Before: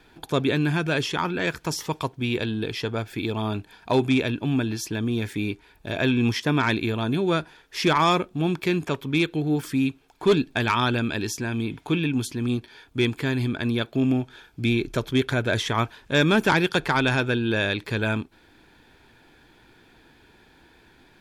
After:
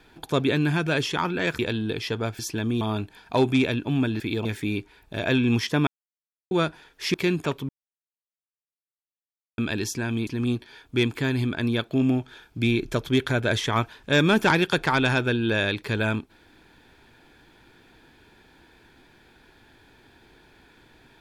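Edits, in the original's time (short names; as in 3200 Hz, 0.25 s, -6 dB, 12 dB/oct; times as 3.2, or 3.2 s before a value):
1.59–2.32 cut
3.12–3.37 swap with 4.76–5.18
6.6–7.24 mute
7.87–8.57 cut
9.12–11.01 mute
11.7–12.29 cut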